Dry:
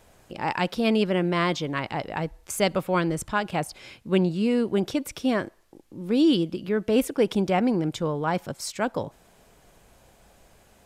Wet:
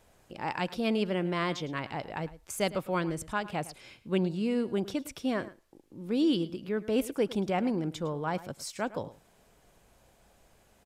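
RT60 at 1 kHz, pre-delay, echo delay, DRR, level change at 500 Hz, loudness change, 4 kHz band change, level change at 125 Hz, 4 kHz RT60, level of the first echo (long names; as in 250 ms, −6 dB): no reverb audible, no reverb audible, 107 ms, no reverb audible, −6.5 dB, −6.5 dB, −6.5 dB, −6.5 dB, no reverb audible, −17.0 dB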